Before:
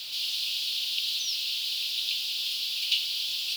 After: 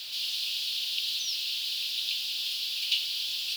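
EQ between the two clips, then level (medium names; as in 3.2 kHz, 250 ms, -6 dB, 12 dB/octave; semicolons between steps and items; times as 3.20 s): high-pass 55 Hz; peaking EQ 1.7 kHz +4.5 dB 0.32 oct; -1.5 dB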